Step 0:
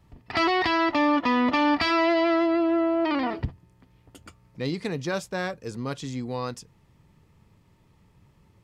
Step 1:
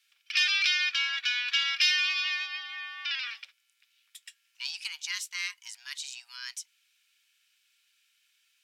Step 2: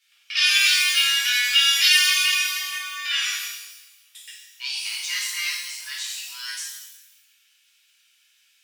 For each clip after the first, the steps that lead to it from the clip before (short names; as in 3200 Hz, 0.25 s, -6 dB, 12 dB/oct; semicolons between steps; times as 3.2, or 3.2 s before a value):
frequency shift +480 Hz; inverse Chebyshev high-pass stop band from 680 Hz, stop band 60 dB; gain +4.5 dB
shimmer reverb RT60 1 s, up +12 st, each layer -8 dB, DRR -7 dB